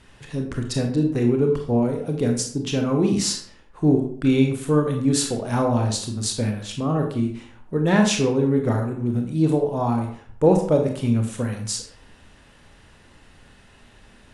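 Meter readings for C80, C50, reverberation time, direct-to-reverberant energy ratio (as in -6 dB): 10.0 dB, 6.0 dB, 0.55 s, 2.5 dB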